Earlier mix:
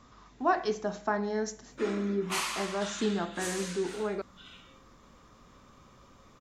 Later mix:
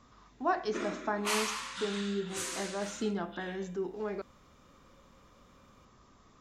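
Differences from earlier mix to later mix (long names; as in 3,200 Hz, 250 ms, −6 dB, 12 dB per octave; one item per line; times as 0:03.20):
speech −3.5 dB
background: entry −1.05 s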